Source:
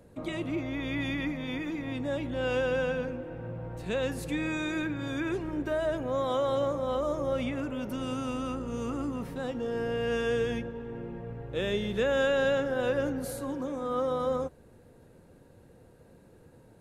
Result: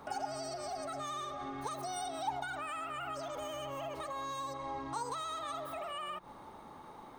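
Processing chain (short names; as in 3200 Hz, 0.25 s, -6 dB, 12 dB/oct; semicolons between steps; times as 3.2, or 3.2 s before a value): compressor 5:1, threshold -42 dBFS, peak gain reduction 17 dB; small resonant body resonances 370/3700 Hz, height 14 dB, ringing for 90 ms; speed mistake 33 rpm record played at 78 rpm; gain +1.5 dB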